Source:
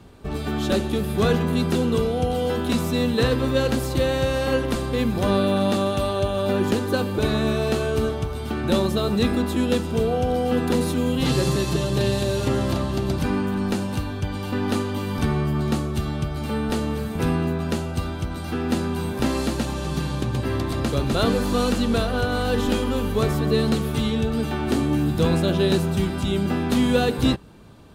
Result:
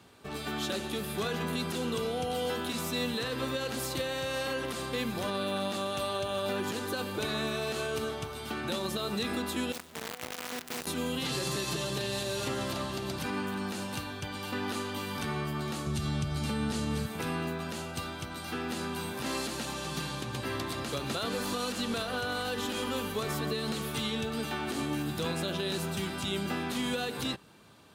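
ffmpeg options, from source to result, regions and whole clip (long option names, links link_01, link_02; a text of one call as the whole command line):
ffmpeg -i in.wav -filter_complex "[0:a]asettb=1/sr,asplit=3[link_01][link_02][link_03];[link_01]atrim=end=9.724[link_04];[link_02]atrim=start=9.72:end=10.87,asetpts=PTS-STARTPTS,afade=type=in:duration=0.004:curve=qsin,afade=type=out:start_time=1.146:duration=0.004:curve=qsin,equalizer=frequency=260:width_type=o:width=0.25:gain=3,acrusher=bits=4:dc=4:mix=0:aa=0.000001,aeval=exprs='(tanh(20*val(0)+0.75)-tanh(0.75))/20':channel_layout=same[link_05];[link_03]atrim=start=10.866[link_06];[link_04][link_05]acrossfade=duration=0.004:curve1=hsin:curve2=qsin[link_07];[link_07][link_06]acrossfade=duration=0.004:curve1=qsin:curve2=hsin,asettb=1/sr,asplit=3[link_08][link_09][link_10];[link_08]atrim=end=15.864[link_11];[link_09]atrim=start=15.86:end=17.06,asetpts=PTS-STARTPTS,afade=type=in:duration=0.004:curve=qsin,afade=type=out:start_time=1.196:duration=0.004:curve=qsin,lowpass=9700,bass=frequency=250:gain=12,treble=frequency=4000:gain=6[link_12];[link_10]atrim=start=17.056[link_13];[link_11][link_12]acrossfade=duration=0.004:curve1=hsin:curve2=qsin[link_14];[link_14][link_13]acrossfade=duration=0.004:curve1=qsin:curve2=hsin,highpass=100,tiltshelf=frequency=740:gain=-5.5,alimiter=limit=-16.5dB:level=0:latency=1:release=79,volume=-6.5dB" out.wav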